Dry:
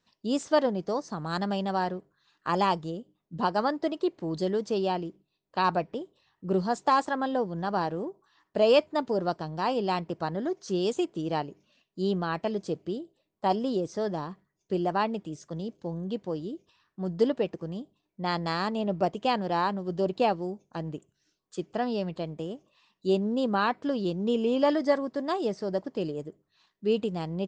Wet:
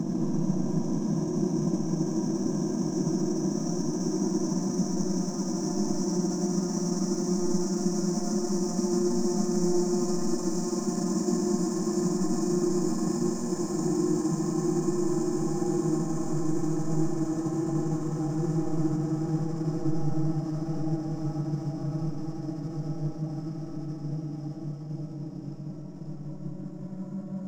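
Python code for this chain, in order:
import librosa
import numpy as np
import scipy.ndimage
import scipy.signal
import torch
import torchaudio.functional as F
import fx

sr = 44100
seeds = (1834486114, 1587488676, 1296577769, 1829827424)

y = fx.brickwall_bandstop(x, sr, low_hz=350.0, high_hz=5100.0)
y = fx.peak_eq(y, sr, hz=280.0, db=-9.0, octaves=0.28)
y = fx.leveller(y, sr, passes=3)
y = fx.paulstretch(y, sr, seeds[0], factor=19.0, window_s=1.0, from_s=10.32)
y = fx.transient(y, sr, attack_db=3, sustain_db=-6)
y = fx.rev_freeverb(y, sr, rt60_s=1.7, hf_ratio=0.4, predelay_ms=45, drr_db=-0.5)
y = y * 10.0 ** (-1.5 / 20.0)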